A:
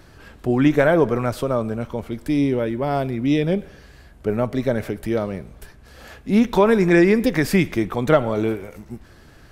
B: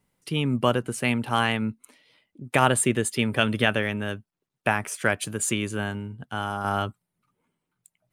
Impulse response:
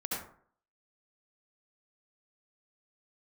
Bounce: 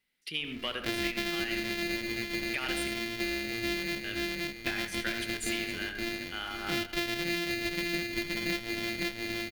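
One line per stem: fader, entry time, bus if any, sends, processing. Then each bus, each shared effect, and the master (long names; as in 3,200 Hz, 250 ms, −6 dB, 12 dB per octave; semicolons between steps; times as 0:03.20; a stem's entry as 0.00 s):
−5.0 dB, 0.40 s, no send, echo send −5 dB, samples sorted by size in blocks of 128 samples; parametric band 1,300 Hz −4 dB 0.33 octaves
−6.0 dB, 0.00 s, muted 0:02.88–0:04.04, send −7.5 dB, no echo send, low-shelf EQ 420 Hz −11 dB; soft clipping −14 dBFS, distortion −14 dB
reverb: on, RT60 0.55 s, pre-delay 63 ms
echo: repeating echo 522 ms, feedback 36%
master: octave-band graphic EQ 125/500/1,000/2,000/4,000/8,000 Hz −11/−4/−12/+7/+7/−8 dB; downward compressor 6 to 1, threshold −29 dBFS, peak gain reduction 13.5 dB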